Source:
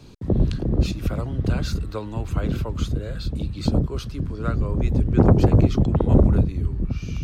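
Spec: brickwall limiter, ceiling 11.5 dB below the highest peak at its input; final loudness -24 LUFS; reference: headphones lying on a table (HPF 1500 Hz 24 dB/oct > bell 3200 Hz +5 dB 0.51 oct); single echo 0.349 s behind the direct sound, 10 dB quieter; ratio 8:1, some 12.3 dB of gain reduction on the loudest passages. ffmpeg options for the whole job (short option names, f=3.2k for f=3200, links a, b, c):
-af "acompressor=threshold=-23dB:ratio=8,alimiter=level_in=0.5dB:limit=-24dB:level=0:latency=1,volume=-0.5dB,highpass=f=1.5k:w=0.5412,highpass=f=1.5k:w=1.3066,equalizer=f=3.2k:t=o:w=0.51:g=5,aecho=1:1:349:0.316,volume=21.5dB"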